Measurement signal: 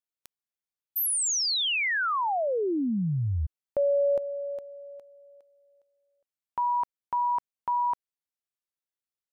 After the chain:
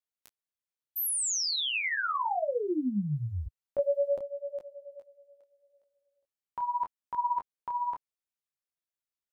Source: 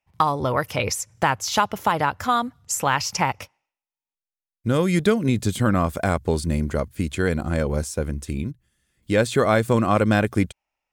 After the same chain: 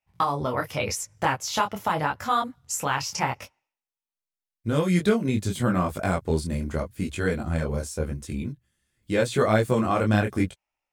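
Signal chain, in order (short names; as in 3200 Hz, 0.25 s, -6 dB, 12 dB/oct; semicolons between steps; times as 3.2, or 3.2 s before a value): short-mantissa float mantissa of 8-bit; detuned doubles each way 29 cents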